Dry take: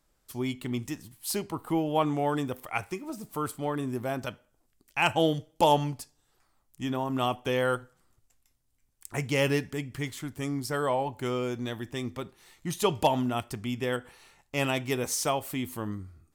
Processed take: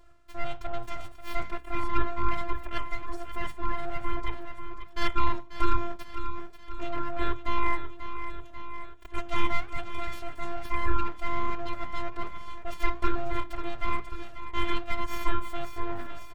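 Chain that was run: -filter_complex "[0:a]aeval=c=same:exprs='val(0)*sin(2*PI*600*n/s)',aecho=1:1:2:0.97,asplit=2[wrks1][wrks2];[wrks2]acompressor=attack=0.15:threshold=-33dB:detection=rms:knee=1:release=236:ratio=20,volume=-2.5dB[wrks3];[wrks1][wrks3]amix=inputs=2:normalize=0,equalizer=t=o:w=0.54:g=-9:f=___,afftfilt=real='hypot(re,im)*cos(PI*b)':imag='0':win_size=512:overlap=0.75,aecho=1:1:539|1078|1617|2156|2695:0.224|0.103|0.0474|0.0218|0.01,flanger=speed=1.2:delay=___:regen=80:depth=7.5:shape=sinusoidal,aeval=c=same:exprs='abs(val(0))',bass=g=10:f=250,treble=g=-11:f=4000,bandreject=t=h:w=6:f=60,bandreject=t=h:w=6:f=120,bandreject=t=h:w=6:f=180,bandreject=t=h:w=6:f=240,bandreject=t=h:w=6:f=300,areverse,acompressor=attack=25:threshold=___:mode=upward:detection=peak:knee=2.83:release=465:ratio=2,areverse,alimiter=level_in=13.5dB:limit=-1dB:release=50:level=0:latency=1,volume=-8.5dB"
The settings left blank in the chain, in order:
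13000, 0.2, -27dB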